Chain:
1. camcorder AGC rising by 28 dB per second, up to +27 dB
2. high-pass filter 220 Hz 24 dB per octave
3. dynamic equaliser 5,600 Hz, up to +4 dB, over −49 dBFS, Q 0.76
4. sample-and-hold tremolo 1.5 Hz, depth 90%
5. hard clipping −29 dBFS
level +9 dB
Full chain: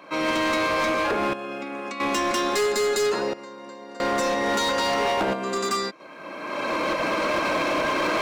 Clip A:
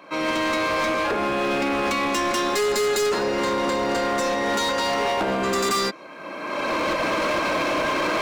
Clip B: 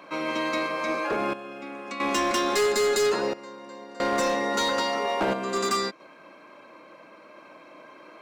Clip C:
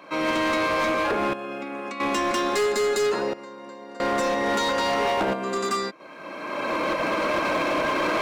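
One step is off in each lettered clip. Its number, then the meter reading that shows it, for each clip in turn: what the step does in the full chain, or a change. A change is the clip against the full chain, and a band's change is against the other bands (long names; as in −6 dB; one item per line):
4, change in momentary loudness spread −7 LU
1, change in crest factor +3.0 dB
3, 8 kHz band −3.0 dB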